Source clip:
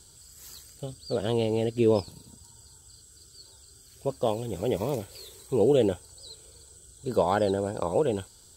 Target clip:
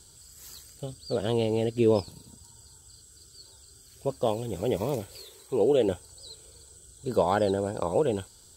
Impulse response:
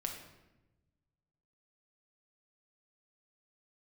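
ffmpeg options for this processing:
-filter_complex "[0:a]asettb=1/sr,asplit=3[link_01][link_02][link_03];[link_01]atrim=end=5.224[link_04];[link_02]atrim=start=5.22:end=5.88,asetpts=PTS-STARTPTS,afade=type=in:duration=0.004:curve=qsin,afade=type=out:start_time=0.656:duration=0.004:curve=qsin,bass=frequency=250:gain=-8,treble=frequency=4000:gain=-3[link_05];[link_03]atrim=start=5.876[link_06];[link_04][link_05]acrossfade=duration=0.004:curve1=hsin:curve2=qsin[link_07];[link_07][link_06]acrossfade=duration=0.004:curve1=qsin:curve2=hsin"

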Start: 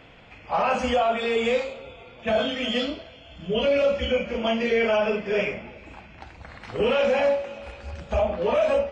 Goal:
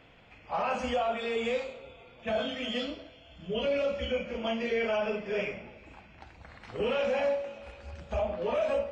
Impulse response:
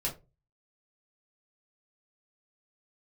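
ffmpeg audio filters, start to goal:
-filter_complex "[0:a]asplit=2[link_01][link_02];[1:a]atrim=start_sample=2205,adelay=117[link_03];[link_02][link_03]afir=irnorm=-1:irlink=0,volume=-22.5dB[link_04];[link_01][link_04]amix=inputs=2:normalize=0,volume=-7.5dB"

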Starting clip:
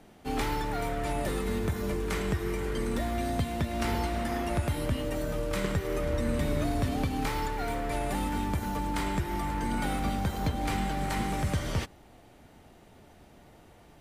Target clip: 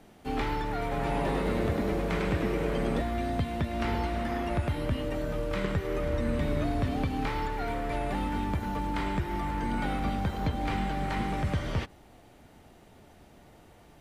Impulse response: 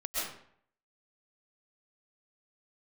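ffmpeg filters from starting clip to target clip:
-filter_complex "[0:a]acrossover=split=4200[link_01][link_02];[link_02]acompressor=threshold=-58dB:ratio=4:attack=1:release=60[link_03];[link_01][link_03]amix=inputs=2:normalize=0,asettb=1/sr,asplit=3[link_04][link_05][link_06];[link_04]atrim=end=0.814[link_07];[link_05]atrim=start=0.81:end=3.02,asetpts=PTS-STARTPTS,afade=type=in:duration=0.004:curve=qsin,afade=type=out:start_time=2.206:duration=0.004:curve=qsin,asplit=8[link_08][link_09][link_10][link_11][link_12][link_13][link_14][link_15];[link_09]adelay=100,afreqshift=120,volume=-4dB[link_16];[link_10]adelay=200,afreqshift=240,volume=-9.2dB[link_17];[link_11]adelay=300,afreqshift=360,volume=-14.4dB[link_18];[link_12]adelay=400,afreqshift=480,volume=-19.6dB[link_19];[link_13]adelay=500,afreqshift=600,volume=-24.8dB[link_20];[link_14]adelay=600,afreqshift=720,volume=-30dB[link_21];[link_15]adelay=700,afreqshift=840,volume=-35.2dB[link_22];[link_08][link_16][link_17][link_18][link_19][link_20][link_21][link_22]amix=inputs=8:normalize=0,atrim=end_sample=97461[link_23];[link_06]atrim=start=3.016[link_24];[link_07][link_23]acrossfade=duration=0.004:curve1=hsin:curve2=qsin[link_25];[link_25][link_24]acrossfade=duration=0.004:curve1=qsin:curve2=hsin"

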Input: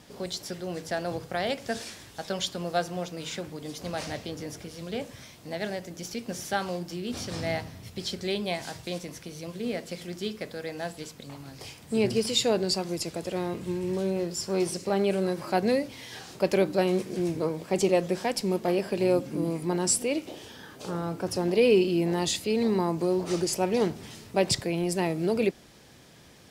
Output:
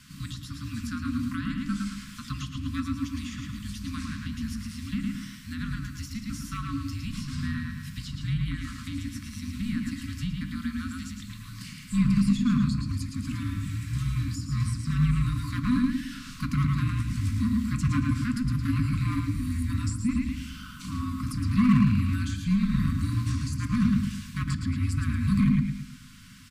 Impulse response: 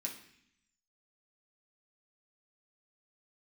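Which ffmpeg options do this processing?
-filter_complex "[0:a]bandreject=frequency=60:width_type=h:width=6,bandreject=frequency=120:width_type=h:width=6,bandreject=frequency=180:width_type=h:width=6,bandreject=frequency=240:width_type=h:width=6,bandreject=frequency=300:width_type=h:width=6,bandreject=frequency=360:width_type=h:width=6,bandreject=frequency=420:width_type=h:width=6,bandreject=frequency=480:width_type=h:width=6,asplit=2[link_01][link_02];[link_02]adelay=109,lowpass=frequency=4900:poles=1,volume=-3dB,asplit=2[link_03][link_04];[link_04]adelay=109,lowpass=frequency=4900:poles=1,volume=0.39,asplit=2[link_05][link_06];[link_06]adelay=109,lowpass=frequency=4900:poles=1,volume=0.39,asplit=2[link_07][link_08];[link_08]adelay=109,lowpass=frequency=4900:poles=1,volume=0.39,asplit=2[link_09][link_10];[link_10]adelay=109,lowpass=frequency=4900:poles=1,volume=0.39[link_11];[link_01][link_03][link_05][link_07][link_09][link_11]amix=inputs=6:normalize=0,acrossover=split=1400[link_12][link_13];[link_12]asoftclip=type=hard:threshold=-22.5dB[link_14];[link_13]acompressor=threshold=-44dB:ratio=12[link_15];[link_14][link_15]amix=inputs=2:normalize=0,afreqshift=-250,asplit=2[link_16][link_17];[1:a]atrim=start_sample=2205,lowshelf=frequency=190:gain=11.5[link_18];[link_17][link_18]afir=irnorm=-1:irlink=0,volume=-5.5dB[link_19];[link_16][link_19]amix=inputs=2:normalize=0,afftfilt=real='re*(1-between(b*sr/4096,300,1000))':imag='im*(1-between(b*sr/4096,300,1000))':win_size=4096:overlap=0.75"

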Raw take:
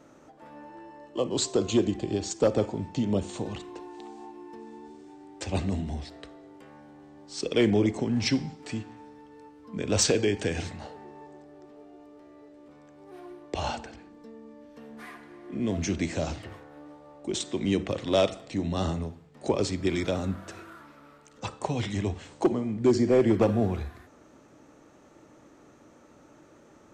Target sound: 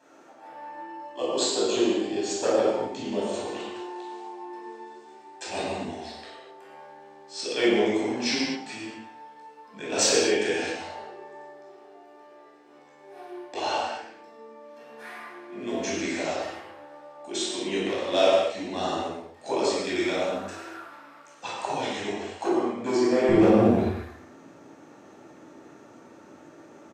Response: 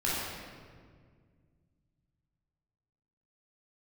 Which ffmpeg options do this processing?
-filter_complex "[0:a]asetnsamples=nb_out_samples=441:pad=0,asendcmd='23.29 highpass f 180',highpass=460,aecho=1:1:106:0.158[link_01];[1:a]atrim=start_sample=2205,afade=type=out:start_time=0.32:duration=0.01,atrim=end_sample=14553[link_02];[link_01][link_02]afir=irnorm=-1:irlink=0,volume=-3dB"

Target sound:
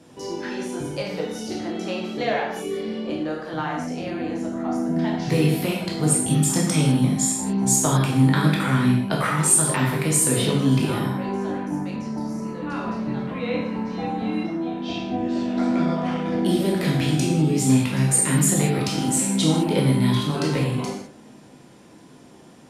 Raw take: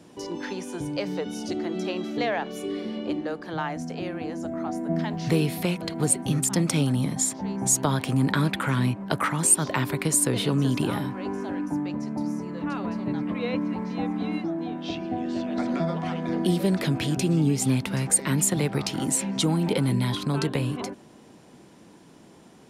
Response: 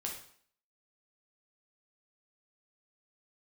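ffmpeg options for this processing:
-filter_complex "[1:a]atrim=start_sample=2205,atrim=end_sample=6174,asetrate=28224,aresample=44100[link_01];[0:a][link_01]afir=irnorm=-1:irlink=0"

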